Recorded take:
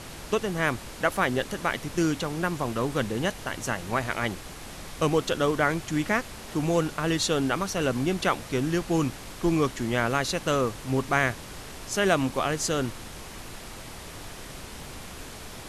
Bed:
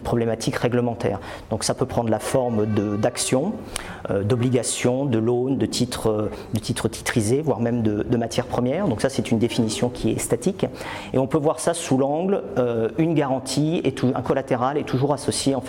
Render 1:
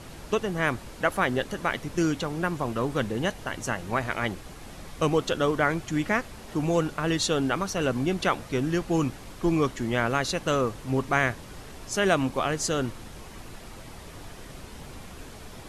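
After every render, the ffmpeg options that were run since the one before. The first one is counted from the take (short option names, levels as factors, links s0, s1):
-af "afftdn=nr=6:nf=-42"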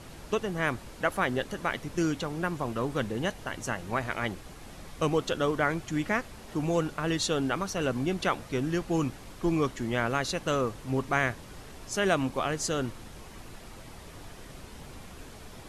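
-af "volume=0.708"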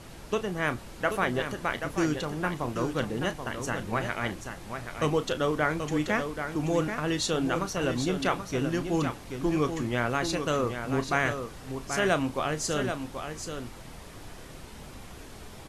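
-filter_complex "[0:a]asplit=2[s0][s1];[s1]adelay=33,volume=0.251[s2];[s0][s2]amix=inputs=2:normalize=0,aecho=1:1:782:0.422"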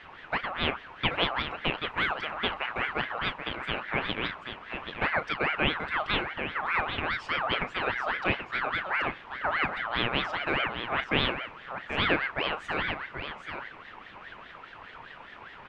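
-af "lowpass=f=1600:t=q:w=1.8,aeval=exprs='val(0)*sin(2*PI*1400*n/s+1400*0.35/4.9*sin(2*PI*4.9*n/s))':c=same"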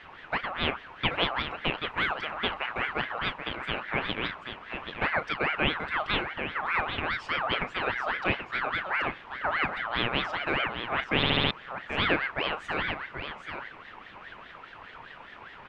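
-filter_complex "[0:a]asplit=6[s0][s1][s2][s3][s4][s5];[s0]atrim=end=11.232[s6];[s1]atrim=start=11.158:end=11.232[s7];[s2]atrim=start=11.158:end=11.232[s8];[s3]atrim=start=11.158:end=11.232[s9];[s4]atrim=start=11.158:end=11.232[s10];[s5]atrim=start=11.508[s11];[s6][s7]acrossfade=d=0.004:c1=hsin:c2=hsin[s12];[s12][s8]acrossfade=d=0.004:c1=hsin:c2=hsin[s13];[s13][s9]acrossfade=d=0.004:c1=hsin:c2=hsin[s14];[s14][s10]acrossfade=d=0.004:c1=hsin:c2=hsin[s15];[s15][s11]acrossfade=d=0.004:c1=hsin:c2=hsin"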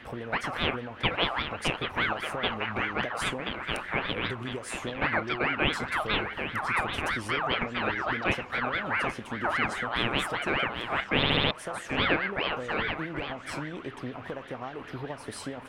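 -filter_complex "[1:a]volume=0.141[s0];[0:a][s0]amix=inputs=2:normalize=0"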